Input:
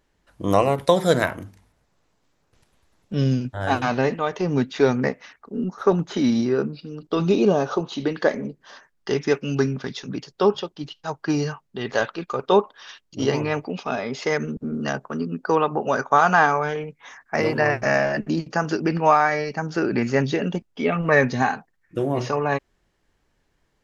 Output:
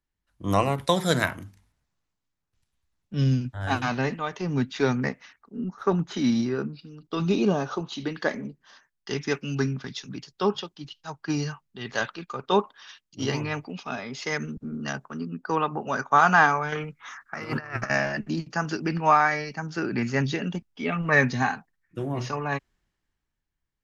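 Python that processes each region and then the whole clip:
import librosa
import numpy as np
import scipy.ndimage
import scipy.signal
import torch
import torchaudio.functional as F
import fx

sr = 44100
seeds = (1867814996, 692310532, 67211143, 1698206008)

y = fx.chain(x, sr, fx.peak_eq(hz=1300.0, db=13.5, octaves=0.42),
    fx.over_compress(threshold_db=-24.0, ratio=-0.5), at=(16.72, 17.9))
y = fx.peak_eq(y, sr, hz=510.0, db=-8.0, octaves=1.3)
y = fx.band_widen(y, sr, depth_pct=40)
y = y * librosa.db_to_amplitude(-1.5)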